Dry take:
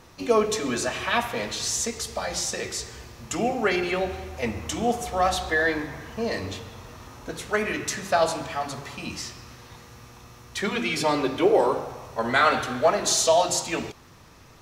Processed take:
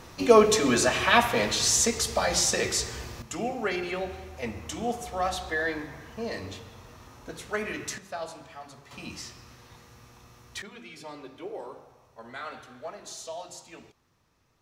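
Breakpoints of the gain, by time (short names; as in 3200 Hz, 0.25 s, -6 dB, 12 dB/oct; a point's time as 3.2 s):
+4 dB
from 3.22 s -6 dB
from 7.98 s -14.5 dB
from 8.91 s -6 dB
from 10.62 s -19 dB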